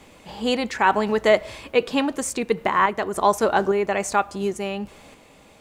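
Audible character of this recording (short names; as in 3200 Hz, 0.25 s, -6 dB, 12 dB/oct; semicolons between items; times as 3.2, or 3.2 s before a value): a quantiser's noise floor 12-bit, dither none; random-step tremolo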